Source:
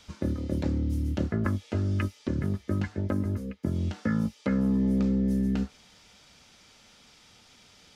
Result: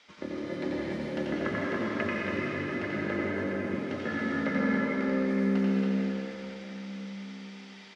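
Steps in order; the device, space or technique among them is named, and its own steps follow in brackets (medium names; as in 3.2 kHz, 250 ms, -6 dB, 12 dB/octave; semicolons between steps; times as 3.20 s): station announcement (band-pass 320–4500 Hz; peaking EQ 2 kHz +8 dB 0.38 oct; loudspeakers at several distances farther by 30 m -3 dB, 96 m -5 dB; reverberation RT60 4.6 s, pre-delay 92 ms, DRR -5 dB); trim -3 dB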